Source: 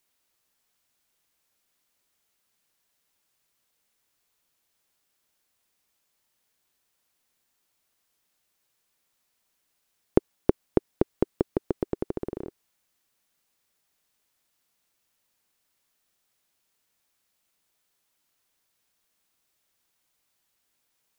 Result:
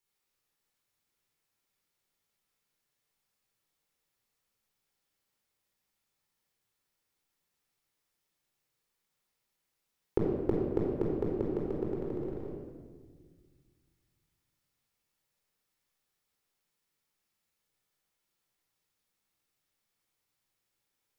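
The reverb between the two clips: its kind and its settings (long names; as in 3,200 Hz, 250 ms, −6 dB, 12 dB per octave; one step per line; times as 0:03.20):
rectangular room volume 1,800 cubic metres, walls mixed, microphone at 4.2 metres
level −13 dB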